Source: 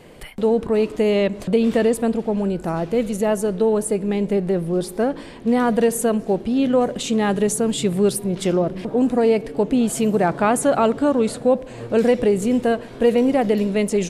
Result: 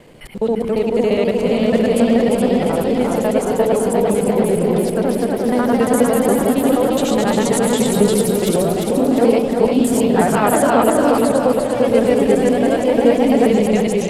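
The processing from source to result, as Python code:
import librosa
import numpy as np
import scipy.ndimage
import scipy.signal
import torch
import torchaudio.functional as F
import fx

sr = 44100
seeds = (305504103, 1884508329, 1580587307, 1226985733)

y = fx.local_reverse(x, sr, ms=69.0)
y = fx.echo_pitch(y, sr, ms=530, semitones=1, count=3, db_per_echo=-3.0)
y = fx.echo_split(y, sr, split_hz=390.0, low_ms=145, high_ms=349, feedback_pct=52, wet_db=-4.0)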